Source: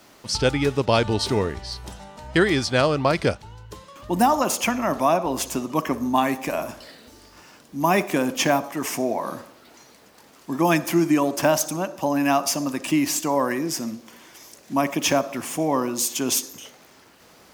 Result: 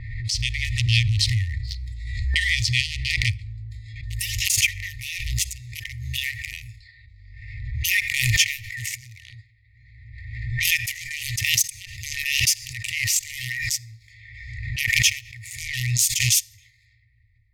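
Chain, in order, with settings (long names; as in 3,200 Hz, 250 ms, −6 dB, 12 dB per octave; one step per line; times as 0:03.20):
adaptive Wiener filter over 15 samples
brick-wall band-stop 120–1,800 Hz
low-pass that shuts in the quiet parts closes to 880 Hz, open at −43.5 dBFS
on a send at −21 dB: low-shelf EQ 94 Hz +11.5 dB + convolution reverb RT60 0.90 s, pre-delay 5 ms
on the sum: automatic gain control gain up to 6.5 dB
high-shelf EQ 4,800 Hz −3 dB
background raised ahead of every attack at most 37 dB per second
level +1.5 dB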